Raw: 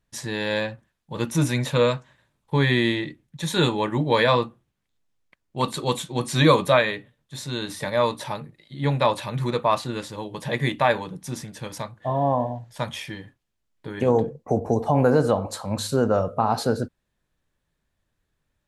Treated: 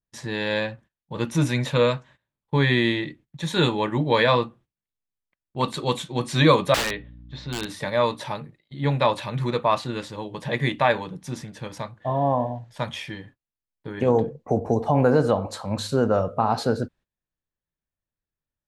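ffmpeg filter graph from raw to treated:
-filter_complex "[0:a]asettb=1/sr,asplit=3[a][b][c];[a]atrim=end=6.744[d];[b]atrim=start=6.74:end=7.66,asetpts=PTS-STARTPTS,afade=t=in:d=0.004:c=qsin,afade=t=out:st=0.916:d=0.004:c=qsin,lowpass=f=4.7k:w=0.5412,lowpass=f=4.7k:w=1.3066,aeval=exprs='(mod(7.94*val(0)+1,2)-1)/7.94':c=same,aeval=exprs='val(0)+0.00708*(sin(2*PI*60*n/s)+sin(2*PI*2*60*n/s)/2+sin(2*PI*3*60*n/s)/3+sin(2*PI*4*60*n/s)/4+sin(2*PI*5*60*n/s)/5)':c=same[e];[c]atrim=start=7.656[f];[d][e]acrossfade=d=0.004:c1=hsin:c2=qsin[g];[g][f]acrossfade=d=0.004:c1=qsin:c2=hsin,aemphasis=mode=reproduction:type=50kf,agate=range=-16dB:threshold=-49dB:ratio=16:detection=peak,adynamicequalizer=threshold=0.0126:dfrequency=1900:dqfactor=0.7:tfrequency=1900:tqfactor=0.7:attack=5:release=100:ratio=0.375:range=2:mode=boostabove:tftype=highshelf"

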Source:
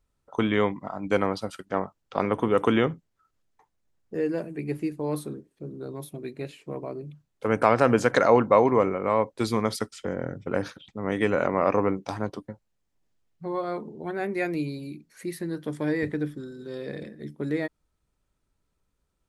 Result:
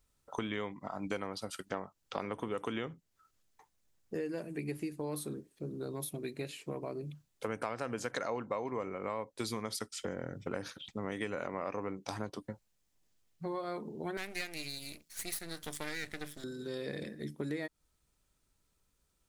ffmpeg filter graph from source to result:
-filter_complex "[0:a]asettb=1/sr,asplit=3[a][b][c];[a]atrim=end=14.174[d];[b]atrim=start=14.17:end=16.44,asetpts=PTS-STARTPTS,afade=t=in:d=0.004:c=qsin,afade=t=out:st=2.266:d=0.004:c=qsin,tiltshelf=f=1.2k:g=-8.5,aeval=exprs='max(val(0),0)':c=same[e];[c]atrim=start=16.436[f];[d][e]acrossfade=d=0.004:c1=hsin:c2=qsin[g];[g][f]acrossfade=d=0.004:c1=qsin:c2=hsin,highshelf=f=2.8k:g=10,acompressor=threshold=-33dB:ratio=5,volume=-2dB"

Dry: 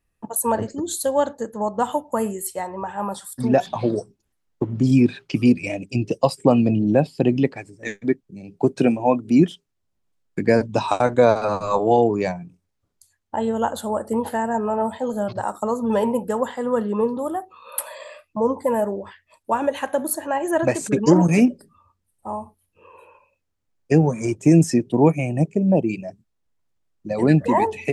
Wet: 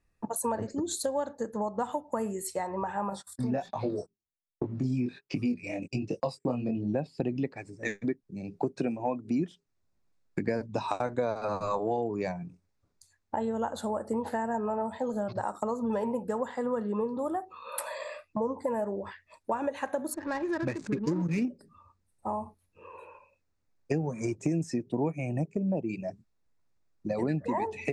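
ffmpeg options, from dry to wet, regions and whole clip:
-filter_complex "[0:a]asettb=1/sr,asplit=3[a][b][c];[a]atrim=end=3.104[d];[b]atrim=start=3.1:end=6.94,asetpts=PTS-STARTPTS,afade=t=in:d=0.004:c=qsin,afade=t=out:st=3.836:d=0.004:c=qsin,flanger=delay=20:depth=3.9:speed=1.3,agate=range=-24dB:threshold=-42dB:ratio=16:release=100:detection=peak[e];[c]atrim=start=6.936[f];[d][e]acrossfade=d=0.004:c1=hsin:c2=qsin[g];[g][f]acrossfade=d=0.004:c1=qsin:c2=hsin,asettb=1/sr,asplit=3[h][i][j];[h]atrim=end=20.144[k];[i]atrim=start=20.14:end=21.45,asetpts=PTS-STARTPTS,afade=t=in:d=0.004:c=qsin,afade=t=out:st=1.306:d=0.004:c=qsin,equalizer=f=700:w=2:g=-15,adynamicsmooth=sensitivity=5.5:basefreq=710[l];[j]atrim=start=21.446[m];[k][l]acrossfade=d=0.004:c1=hsin:c2=qsin[n];[n][m]acrossfade=d=0.004:c1=qsin:c2=hsin,lowpass=7.3k,equalizer=f=3.1k:w=6.6:g=-10,acompressor=threshold=-29dB:ratio=4"

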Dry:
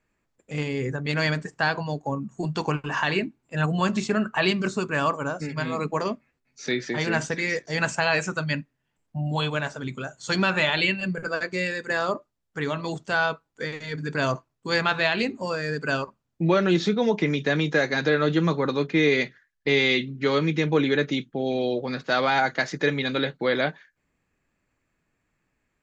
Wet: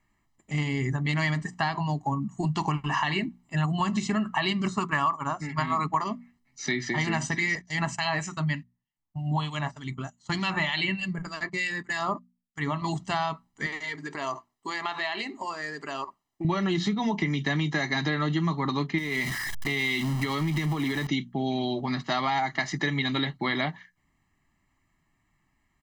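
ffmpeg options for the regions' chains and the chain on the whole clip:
-filter_complex "[0:a]asettb=1/sr,asplit=3[a][b][c];[a]atrim=end=4.694[d];[b]atrim=start=4.69:end=6.04,asetpts=PTS-STARTPTS,afade=t=in:d=0.004:c=qsin,afade=t=out:st=1.346:d=0.004:c=qsin,equalizer=f=1.2k:w=0.89:g=8.5,agate=range=-6dB:threshold=-27dB:ratio=16:release=100:detection=peak[e];[c]atrim=start=6.036[f];[d][e]acrossfade=d=0.004:c1=hsin:c2=qsin[g];[g][f]acrossfade=d=0.004:c1=qsin:c2=hsin,asettb=1/sr,asplit=3[h][i][j];[h]atrim=end=7.554[k];[i]atrim=start=7.55:end=12.82,asetpts=PTS-STARTPTS,afade=t=in:d=0.004:c=qsin,afade=t=out:st=5.266:d=0.004:c=qsin,agate=range=-15dB:threshold=-37dB:ratio=16:release=100:detection=peak,acrossover=split=1900[l][m];[l]aeval=exprs='val(0)*(1-0.7/2+0.7/2*cos(2*PI*3.3*n/s))':c=same[n];[m]aeval=exprs='val(0)*(1-0.7/2-0.7/2*cos(2*PI*3.3*n/s))':c=same[o];[n][o]amix=inputs=2:normalize=0[p];[j]atrim=start=12.816[q];[k][p]acrossfade=d=0.004:c1=hsin:c2=qsin[r];[r][q]acrossfade=d=0.004:c1=qsin:c2=hsin,asettb=1/sr,asplit=3[s][t][u];[s]atrim=end=13.664[v];[t]atrim=start=13.66:end=16.45,asetpts=PTS-STARTPTS,afade=t=in:d=0.004:c=qsin,afade=t=out:st=2.786:d=0.004:c=qsin,lowshelf=f=260:t=q:w=1.5:g=-14,acompressor=threshold=-29dB:ratio=3:attack=3.2:release=140:knee=1:detection=peak[w];[u]atrim=start=16.446[x];[v][w]acrossfade=d=0.004:c1=hsin:c2=qsin[y];[y][x]acrossfade=d=0.004:c1=qsin:c2=hsin,asettb=1/sr,asplit=3[z][aa][ab];[z]atrim=end=18.984[ac];[aa]atrim=start=18.98:end=21.07,asetpts=PTS-STARTPTS,afade=t=in:d=0.004:c=qsin,afade=t=out:st=2.086:d=0.004:c=qsin,aeval=exprs='val(0)+0.5*0.0355*sgn(val(0))':c=same,acompressor=threshold=-25dB:ratio=4:attack=3.2:release=140:knee=1:detection=peak[ad];[ab]atrim=start=21.066[ae];[ac][ad]acrossfade=d=0.004:c1=hsin:c2=qsin[af];[af][ae]acrossfade=d=0.004:c1=qsin:c2=hsin,bandreject=f=60:t=h:w=6,bandreject=f=120:t=h:w=6,bandreject=f=180:t=h:w=6,bandreject=f=240:t=h:w=6,aecho=1:1:1:0.91,acompressor=threshold=-23dB:ratio=6"

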